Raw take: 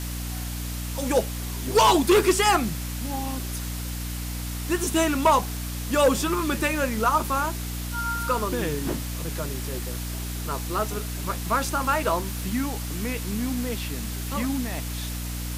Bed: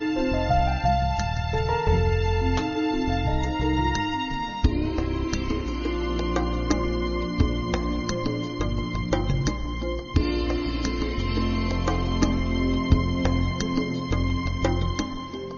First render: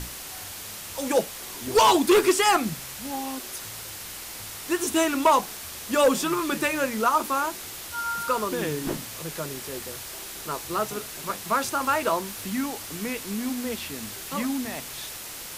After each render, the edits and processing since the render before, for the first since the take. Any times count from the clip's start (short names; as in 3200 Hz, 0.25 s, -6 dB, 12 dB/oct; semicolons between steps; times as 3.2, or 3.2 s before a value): notches 60/120/180/240/300 Hz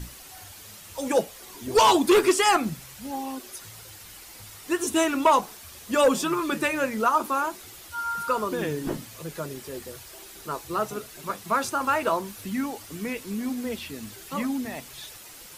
denoiser 9 dB, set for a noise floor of -38 dBFS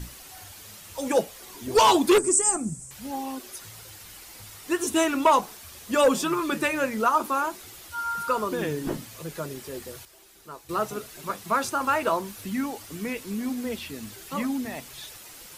2.18–2.91 EQ curve 190 Hz 0 dB, 3900 Hz -23 dB, 8300 Hz +14 dB, 13000 Hz -22 dB; 10.05–10.69 gain -9.5 dB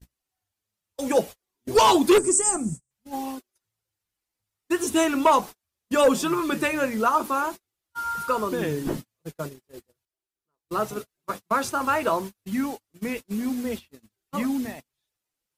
gate -33 dBFS, range -41 dB; low shelf 470 Hz +3 dB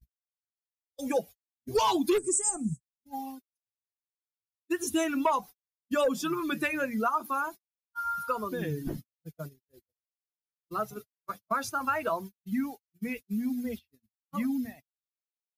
per-bin expansion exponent 1.5; compressor 3:1, threshold -25 dBFS, peak gain reduction 8 dB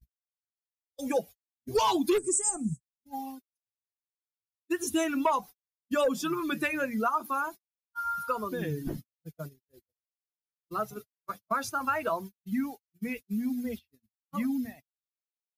nothing audible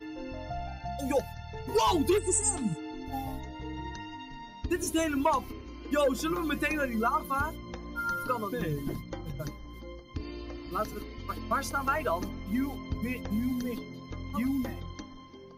add bed -15.5 dB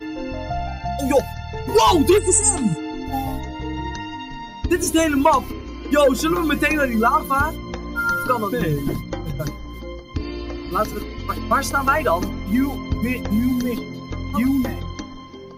gain +11 dB